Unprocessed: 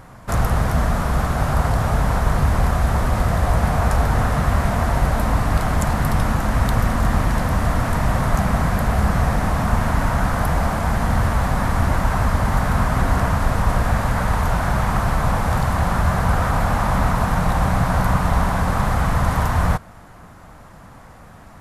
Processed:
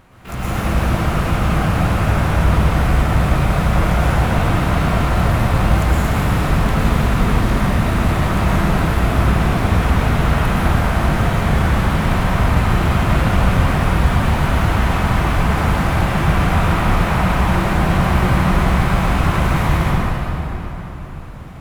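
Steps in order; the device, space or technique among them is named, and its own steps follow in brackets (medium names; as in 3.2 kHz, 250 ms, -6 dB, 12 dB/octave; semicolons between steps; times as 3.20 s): shimmer-style reverb (harmony voices +12 st -5 dB; reverberation RT60 3.9 s, pre-delay 103 ms, DRR -9 dB); trim -8.5 dB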